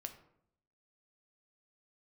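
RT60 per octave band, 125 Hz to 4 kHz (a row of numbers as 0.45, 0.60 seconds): 0.90, 0.85, 0.75, 0.65, 0.55, 0.40 seconds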